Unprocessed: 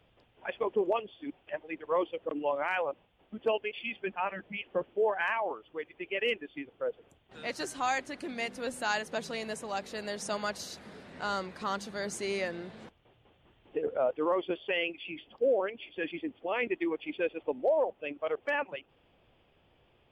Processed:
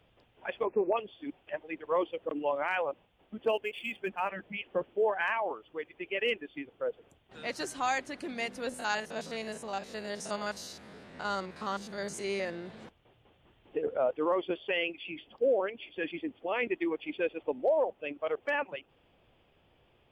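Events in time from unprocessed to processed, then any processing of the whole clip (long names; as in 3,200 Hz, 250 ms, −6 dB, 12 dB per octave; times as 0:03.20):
0:00.66–0:00.97: time-frequency box erased 2,700–8,500 Hz
0:03.44–0:04.29: running median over 5 samples
0:08.69–0:12.66: spectrum averaged block by block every 50 ms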